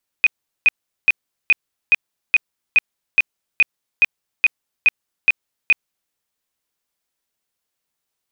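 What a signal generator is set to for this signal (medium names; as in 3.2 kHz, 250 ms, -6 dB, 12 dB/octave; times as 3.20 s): tone bursts 2.49 kHz, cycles 65, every 0.42 s, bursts 14, -8 dBFS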